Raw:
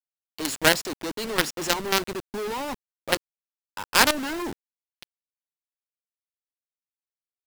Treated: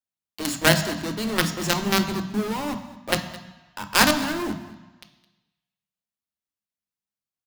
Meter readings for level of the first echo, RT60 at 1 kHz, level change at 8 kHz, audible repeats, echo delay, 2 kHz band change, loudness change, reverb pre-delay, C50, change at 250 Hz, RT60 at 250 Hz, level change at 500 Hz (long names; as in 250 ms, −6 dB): −18.5 dB, 1.2 s, +0.5 dB, 1, 214 ms, +1.0 dB, +1.5 dB, 3 ms, 9.5 dB, +6.5 dB, 1.0 s, +1.0 dB